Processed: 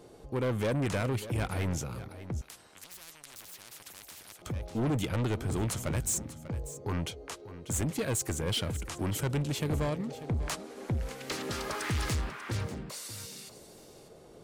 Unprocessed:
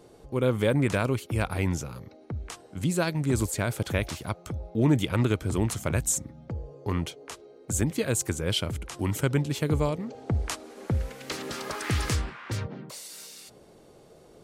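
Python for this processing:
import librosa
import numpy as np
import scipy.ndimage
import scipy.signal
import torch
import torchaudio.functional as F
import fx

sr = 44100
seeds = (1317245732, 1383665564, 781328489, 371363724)

y = 10.0 ** (-26.0 / 20.0) * np.tanh(x / 10.0 ** (-26.0 / 20.0))
y = y + 10.0 ** (-14.5 / 20.0) * np.pad(y, (int(592 * sr / 1000.0), 0))[:len(y)]
y = fx.spectral_comp(y, sr, ratio=10.0, at=(2.41, 4.42))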